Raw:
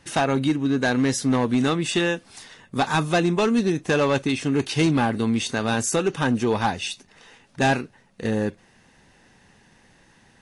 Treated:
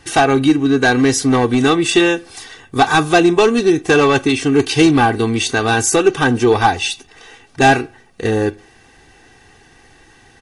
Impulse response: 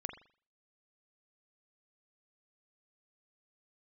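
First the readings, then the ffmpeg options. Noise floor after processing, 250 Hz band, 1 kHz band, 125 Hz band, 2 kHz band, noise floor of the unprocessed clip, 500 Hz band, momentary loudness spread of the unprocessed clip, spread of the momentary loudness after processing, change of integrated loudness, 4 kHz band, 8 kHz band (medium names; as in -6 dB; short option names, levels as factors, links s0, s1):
-49 dBFS, +7.5 dB, +10.0 dB, +5.0 dB, +10.0 dB, -57 dBFS, +9.5 dB, 7 LU, 10 LU, +8.5 dB, +8.5 dB, +9.0 dB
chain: -filter_complex "[0:a]aecho=1:1:2.6:0.66,asplit=2[s0][s1];[1:a]atrim=start_sample=2205[s2];[s1][s2]afir=irnorm=-1:irlink=0,volume=0.224[s3];[s0][s3]amix=inputs=2:normalize=0,volume=2"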